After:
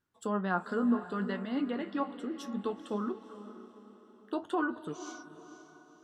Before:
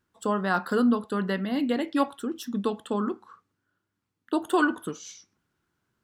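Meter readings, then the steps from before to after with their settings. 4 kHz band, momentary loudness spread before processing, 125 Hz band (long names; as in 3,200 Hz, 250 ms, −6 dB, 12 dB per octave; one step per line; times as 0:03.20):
−10.0 dB, 12 LU, can't be measured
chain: treble cut that deepens with the level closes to 1,500 Hz, closed at −19.5 dBFS
flanger 0.61 Hz, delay 6.7 ms, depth 6.8 ms, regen +54%
on a send: feedback delay with all-pass diffusion 489 ms, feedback 43%, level −13 dB
on the sum: level −3 dB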